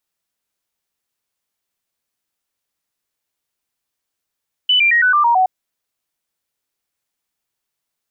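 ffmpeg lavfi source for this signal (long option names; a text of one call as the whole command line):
ffmpeg -f lavfi -i "aevalsrc='0.316*clip(min(mod(t,0.11),0.11-mod(t,0.11))/0.005,0,1)*sin(2*PI*2990*pow(2,-floor(t/0.11)/3)*mod(t,0.11))':duration=0.77:sample_rate=44100" out.wav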